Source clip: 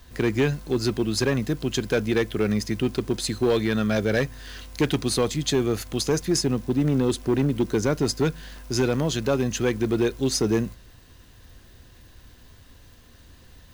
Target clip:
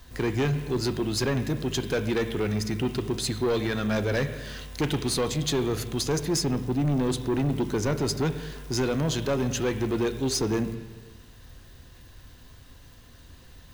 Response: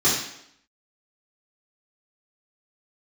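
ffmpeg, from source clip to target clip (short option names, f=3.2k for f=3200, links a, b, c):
-filter_complex "[0:a]asplit=2[a][b];[b]lowpass=4.4k[c];[1:a]atrim=start_sample=2205,asetrate=23814,aresample=44100[d];[c][d]afir=irnorm=-1:irlink=0,volume=-32.5dB[e];[a][e]amix=inputs=2:normalize=0,asoftclip=type=tanh:threshold=-20dB"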